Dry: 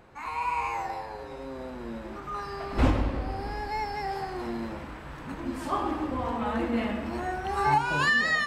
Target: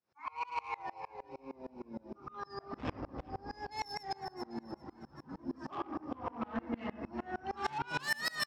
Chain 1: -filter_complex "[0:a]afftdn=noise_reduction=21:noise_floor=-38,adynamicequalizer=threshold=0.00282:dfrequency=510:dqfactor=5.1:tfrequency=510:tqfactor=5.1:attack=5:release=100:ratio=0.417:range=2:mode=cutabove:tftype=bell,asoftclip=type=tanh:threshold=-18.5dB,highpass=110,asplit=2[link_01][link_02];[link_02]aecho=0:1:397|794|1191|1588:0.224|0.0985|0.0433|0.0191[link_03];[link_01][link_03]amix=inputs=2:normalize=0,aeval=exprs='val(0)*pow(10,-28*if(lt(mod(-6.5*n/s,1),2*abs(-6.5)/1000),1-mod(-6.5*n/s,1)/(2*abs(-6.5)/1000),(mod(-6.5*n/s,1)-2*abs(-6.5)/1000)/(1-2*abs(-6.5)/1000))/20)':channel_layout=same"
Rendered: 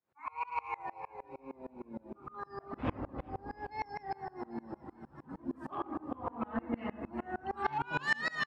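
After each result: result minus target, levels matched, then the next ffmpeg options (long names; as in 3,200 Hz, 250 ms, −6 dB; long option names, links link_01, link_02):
4,000 Hz band −6.5 dB; soft clipping: distortion −8 dB
-filter_complex "[0:a]afftdn=noise_reduction=21:noise_floor=-38,adynamicequalizer=threshold=0.00282:dfrequency=510:dqfactor=5.1:tfrequency=510:tqfactor=5.1:attack=5:release=100:ratio=0.417:range=2:mode=cutabove:tftype=bell,lowpass=frequency=5400:width_type=q:width=11,asoftclip=type=tanh:threshold=-18.5dB,highpass=110,asplit=2[link_01][link_02];[link_02]aecho=0:1:397|794|1191|1588:0.224|0.0985|0.0433|0.0191[link_03];[link_01][link_03]amix=inputs=2:normalize=0,aeval=exprs='val(0)*pow(10,-28*if(lt(mod(-6.5*n/s,1),2*abs(-6.5)/1000),1-mod(-6.5*n/s,1)/(2*abs(-6.5)/1000),(mod(-6.5*n/s,1)-2*abs(-6.5)/1000)/(1-2*abs(-6.5)/1000))/20)':channel_layout=same"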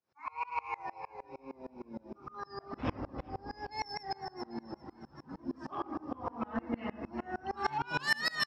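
soft clipping: distortion −7 dB
-filter_complex "[0:a]afftdn=noise_reduction=21:noise_floor=-38,adynamicequalizer=threshold=0.00282:dfrequency=510:dqfactor=5.1:tfrequency=510:tqfactor=5.1:attack=5:release=100:ratio=0.417:range=2:mode=cutabove:tftype=bell,lowpass=frequency=5400:width_type=q:width=11,asoftclip=type=tanh:threshold=-25.5dB,highpass=110,asplit=2[link_01][link_02];[link_02]aecho=0:1:397|794|1191|1588:0.224|0.0985|0.0433|0.0191[link_03];[link_01][link_03]amix=inputs=2:normalize=0,aeval=exprs='val(0)*pow(10,-28*if(lt(mod(-6.5*n/s,1),2*abs(-6.5)/1000),1-mod(-6.5*n/s,1)/(2*abs(-6.5)/1000),(mod(-6.5*n/s,1)-2*abs(-6.5)/1000)/(1-2*abs(-6.5)/1000))/20)':channel_layout=same"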